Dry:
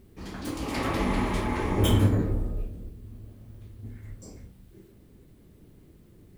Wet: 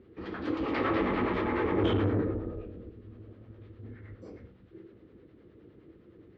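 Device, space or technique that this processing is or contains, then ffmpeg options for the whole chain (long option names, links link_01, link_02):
guitar amplifier with harmonic tremolo: -filter_complex "[0:a]acrossover=split=570[link_01][link_02];[link_01]aeval=exprs='val(0)*(1-0.5/2+0.5/2*cos(2*PI*9.7*n/s))':channel_layout=same[link_03];[link_02]aeval=exprs='val(0)*(1-0.5/2-0.5/2*cos(2*PI*9.7*n/s))':channel_layout=same[link_04];[link_03][link_04]amix=inputs=2:normalize=0,asoftclip=type=tanh:threshold=-23.5dB,highpass=80,equalizer=frequency=160:width_type=q:width=4:gain=-5,equalizer=frequency=330:width_type=q:width=4:gain=8,equalizer=frequency=480:width_type=q:width=4:gain=9,equalizer=frequency=1300:width_type=q:width=4:gain=7,equalizer=frequency=1800:width_type=q:width=4:gain=4,lowpass=frequency=3600:width=0.5412,lowpass=frequency=3600:width=1.3066"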